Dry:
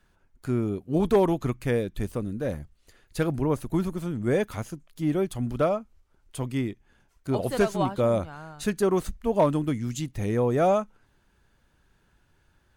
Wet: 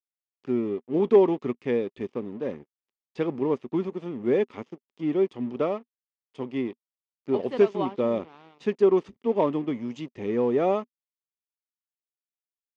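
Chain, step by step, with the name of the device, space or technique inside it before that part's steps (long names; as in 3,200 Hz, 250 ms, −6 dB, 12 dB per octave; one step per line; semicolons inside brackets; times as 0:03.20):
blown loudspeaker (dead-zone distortion −42.5 dBFS; loudspeaker in its box 240–4,300 Hz, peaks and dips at 400 Hz +7 dB, 660 Hz −6 dB, 1,500 Hz −10 dB, 4,100 Hz −9 dB)
parametric band 240 Hz +5 dB 0.29 octaves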